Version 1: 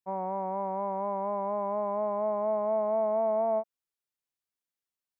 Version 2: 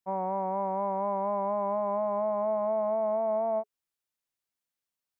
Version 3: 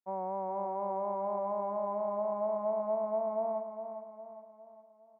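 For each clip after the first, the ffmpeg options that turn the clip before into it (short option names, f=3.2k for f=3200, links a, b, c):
-af "bandreject=f=420:w=12,alimiter=level_in=0.5dB:limit=-24dB:level=0:latency=1:release=136,volume=-0.5dB,volume=2dB"
-filter_complex "[0:a]bandpass=f=500:t=q:w=0.53:csg=0,asplit=2[a][b];[b]aecho=0:1:408|816|1224|1632|2040:0.376|0.177|0.083|0.039|0.0183[c];[a][c]amix=inputs=2:normalize=0,volume=-4dB"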